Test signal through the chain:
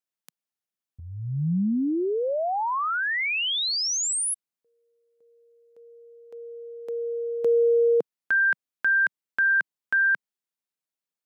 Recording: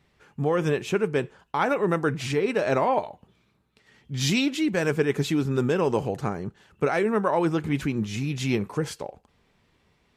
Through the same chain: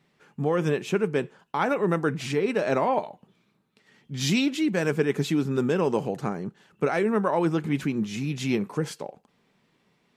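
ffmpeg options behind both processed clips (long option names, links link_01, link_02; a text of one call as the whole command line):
ffmpeg -i in.wav -af "lowshelf=frequency=110:width_type=q:width=1.5:gain=-13.5,volume=-1.5dB" out.wav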